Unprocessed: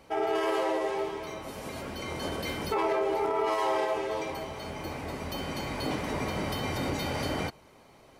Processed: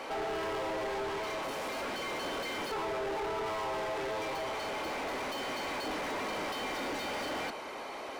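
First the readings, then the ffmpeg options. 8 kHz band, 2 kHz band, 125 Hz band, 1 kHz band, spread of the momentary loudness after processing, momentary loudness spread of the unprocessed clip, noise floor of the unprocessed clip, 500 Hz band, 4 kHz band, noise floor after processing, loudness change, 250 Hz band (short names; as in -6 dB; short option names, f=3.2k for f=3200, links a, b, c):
-1.5 dB, 0.0 dB, -13.0 dB, -3.5 dB, 2 LU, 10 LU, -56 dBFS, -5.0 dB, -1.0 dB, -42 dBFS, -4.0 dB, -6.5 dB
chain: -filter_complex "[0:a]acrossover=split=340[a][b];[b]acompressor=threshold=-31dB:ratio=6[c];[a][c]amix=inputs=2:normalize=0,highpass=f=220:w=0.5412,highpass=f=220:w=1.3066,asplit=2[d][e];[e]highpass=f=720:p=1,volume=36dB,asoftclip=type=tanh:threshold=-21dB[f];[d][f]amix=inputs=2:normalize=0,lowpass=f=2.5k:p=1,volume=-6dB,volume=-8dB"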